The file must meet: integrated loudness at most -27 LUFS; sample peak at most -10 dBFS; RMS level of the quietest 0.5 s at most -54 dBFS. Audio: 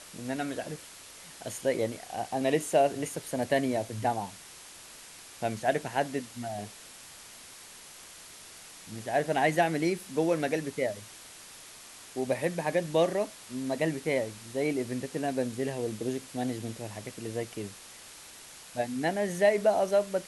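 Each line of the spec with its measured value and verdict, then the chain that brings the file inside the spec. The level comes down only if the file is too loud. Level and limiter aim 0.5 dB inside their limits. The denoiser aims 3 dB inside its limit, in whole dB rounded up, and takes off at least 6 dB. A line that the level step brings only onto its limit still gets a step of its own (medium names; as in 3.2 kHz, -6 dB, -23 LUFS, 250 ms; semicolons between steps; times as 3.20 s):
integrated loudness -30.5 LUFS: pass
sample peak -12.0 dBFS: pass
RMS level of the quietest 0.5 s -49 dBFS: fail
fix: noise reduction 8 dB, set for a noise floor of -49 dBFS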